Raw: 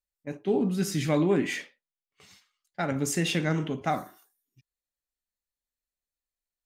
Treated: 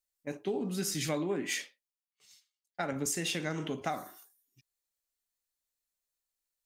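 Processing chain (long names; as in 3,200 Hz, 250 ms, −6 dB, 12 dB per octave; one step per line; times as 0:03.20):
bass and treble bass −6 dB, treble +6 dB
downward compressor 6 to 1, threshold −30 dBFS, peak gain reduction 9.5 dB
0:00.94–0:03.06: multiband upward and downward expander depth 70%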